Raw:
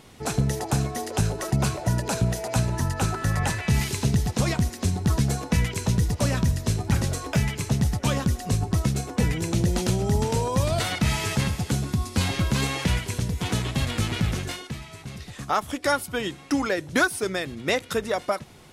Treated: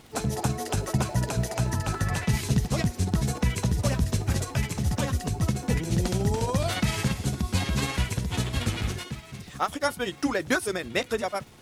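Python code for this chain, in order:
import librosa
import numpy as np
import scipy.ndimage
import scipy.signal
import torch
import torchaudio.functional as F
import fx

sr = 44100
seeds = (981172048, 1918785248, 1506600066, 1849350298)

y = fx.stretch_grains(x, sr, factor=0.62, grain_ms=112.0)
y = fx.dmg_crackle(y, sr, seeds[0], per_s=350.0, level_db=-45.0)
y = F.gain(torch.from_numpy(y), -1.0).numpy()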